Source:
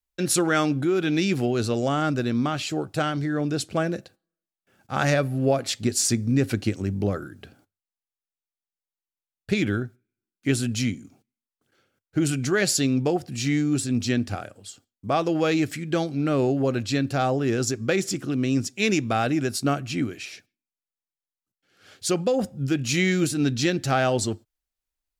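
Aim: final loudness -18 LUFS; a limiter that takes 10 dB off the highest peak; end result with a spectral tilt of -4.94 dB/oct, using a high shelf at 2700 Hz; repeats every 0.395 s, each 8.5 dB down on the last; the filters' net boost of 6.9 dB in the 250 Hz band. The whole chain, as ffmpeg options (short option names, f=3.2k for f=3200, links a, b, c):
-af "equalizer=f=250:t=o:g=8.5,highshelf=f=2.7k:g=5,alimiter=limit=-14.5dB:level=0:latency=1,aecho=1:1:395|790|1185|1580:0.376|0.143|0.0543|0.0206,volume=5.5dB"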